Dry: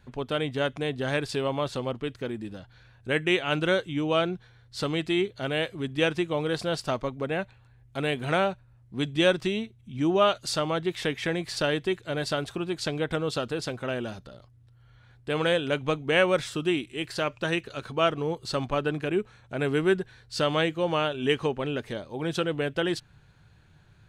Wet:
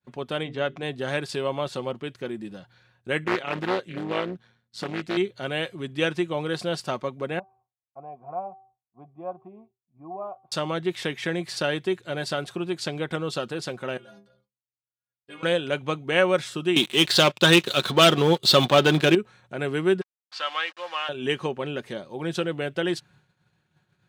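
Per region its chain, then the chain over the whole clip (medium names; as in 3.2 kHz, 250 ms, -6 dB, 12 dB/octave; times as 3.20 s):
0.43–0.83 s: distance through air 96 m + hum notches 50/100/150/200/250/300/350/400/450 Hz
3.24–5.17 s: AM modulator 110 Hz, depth 55% + loudspeaker Doppler distortion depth 0.55 ms
7.39–10.52 s: cascade formant filter a + tilt EQ -3.5 dB/octave + de-hum 384.7 Hz, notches 28
13.97–15.43 s: bass shelf 470 Hz -2.5 dB + inharmonic resonator 60 Hz, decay 0.75 s, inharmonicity 0.03
16.76–19.15 s: high-pass 80 Hz + peaking EQ 3.6 kHz +13.5 dB 0.53 oct + waveshaping leveller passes 3
20.01–21.09 s: send-on-delta sampling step -35.5 dBFS + Butterworth band-pass 2.1 kHz, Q 0.62 + comb 3.8 ms, depth 43%
whole clip: high-pass 130 Hz; expander -53 dBFS; comb 5.5 ms, depth 31%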